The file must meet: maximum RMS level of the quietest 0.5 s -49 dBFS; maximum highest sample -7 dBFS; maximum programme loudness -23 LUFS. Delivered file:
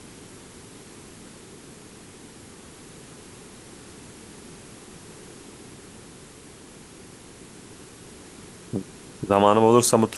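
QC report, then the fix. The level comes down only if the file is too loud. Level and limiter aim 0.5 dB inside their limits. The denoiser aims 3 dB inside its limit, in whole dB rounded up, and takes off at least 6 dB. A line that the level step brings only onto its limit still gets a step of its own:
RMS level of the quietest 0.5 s -46 dBFS: fail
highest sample -2.5 dBFS: fail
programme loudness -20.0 LUFS: fail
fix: gain -3.5 dB; limiter -7.5 dBFS

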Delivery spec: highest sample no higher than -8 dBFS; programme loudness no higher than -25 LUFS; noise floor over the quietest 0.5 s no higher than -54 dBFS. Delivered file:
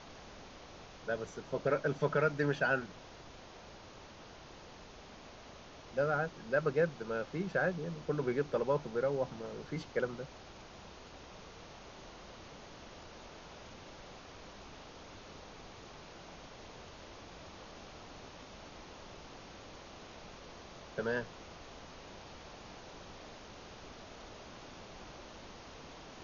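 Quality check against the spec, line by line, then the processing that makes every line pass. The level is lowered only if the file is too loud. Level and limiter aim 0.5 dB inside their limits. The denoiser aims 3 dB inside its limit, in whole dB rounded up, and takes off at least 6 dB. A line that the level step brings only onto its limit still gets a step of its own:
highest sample -17.0 dBFS: OK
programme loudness -35.5 LUFS: OK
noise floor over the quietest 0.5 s -53 dBFS: fail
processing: denoiser 6 dB, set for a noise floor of -53 dBFS

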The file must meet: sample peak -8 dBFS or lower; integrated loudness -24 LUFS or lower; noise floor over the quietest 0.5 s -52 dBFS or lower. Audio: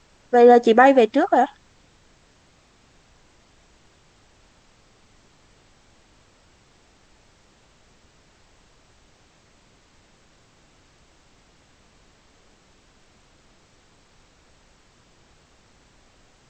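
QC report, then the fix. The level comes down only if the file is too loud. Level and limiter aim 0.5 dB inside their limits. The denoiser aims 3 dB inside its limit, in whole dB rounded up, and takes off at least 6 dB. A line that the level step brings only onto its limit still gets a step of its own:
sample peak -2.5 dBFS: fail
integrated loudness -15.5 LUFS: fail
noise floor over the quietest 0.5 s -57 dBFS: OK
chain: gain -9 dB

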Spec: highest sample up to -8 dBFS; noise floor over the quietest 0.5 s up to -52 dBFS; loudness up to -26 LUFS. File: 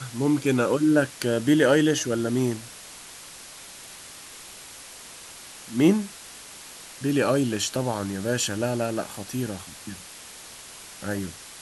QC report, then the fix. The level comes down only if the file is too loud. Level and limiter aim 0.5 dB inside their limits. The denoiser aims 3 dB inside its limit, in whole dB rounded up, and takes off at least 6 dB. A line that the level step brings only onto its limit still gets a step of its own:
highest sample -7.0 dBFS: fail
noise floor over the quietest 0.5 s -43 dBFS: fail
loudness -24.5 LUFS: fail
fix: denoiser 10 dB, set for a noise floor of -43 dBFS; gain -2 dB

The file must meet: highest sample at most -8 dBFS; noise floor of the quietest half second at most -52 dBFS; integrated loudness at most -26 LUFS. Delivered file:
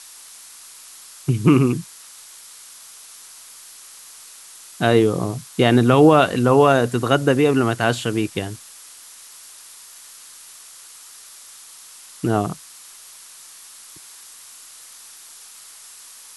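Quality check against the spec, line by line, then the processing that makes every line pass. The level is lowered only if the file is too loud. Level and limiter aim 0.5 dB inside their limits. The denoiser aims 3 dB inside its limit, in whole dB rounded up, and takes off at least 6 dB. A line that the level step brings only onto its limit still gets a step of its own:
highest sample -2.5 dBFS: fail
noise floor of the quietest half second -43 dBFS: fail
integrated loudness -18.0 LUFS: fail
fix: denoiser 6 dB, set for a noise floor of -43 dBFS; gain -8.5 dB

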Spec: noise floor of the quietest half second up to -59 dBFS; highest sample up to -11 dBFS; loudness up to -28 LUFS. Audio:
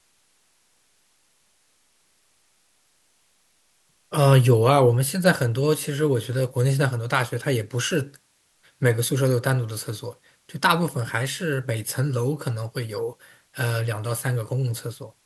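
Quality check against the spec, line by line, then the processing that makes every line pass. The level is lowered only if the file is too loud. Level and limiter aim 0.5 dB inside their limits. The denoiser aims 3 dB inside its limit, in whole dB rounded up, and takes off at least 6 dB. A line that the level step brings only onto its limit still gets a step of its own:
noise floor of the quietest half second -64 dBFS: OK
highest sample -3.5 dBFS: fail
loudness -23.0 LUFS: fail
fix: gain -5.5 dB; limiter -11.5 dBFS

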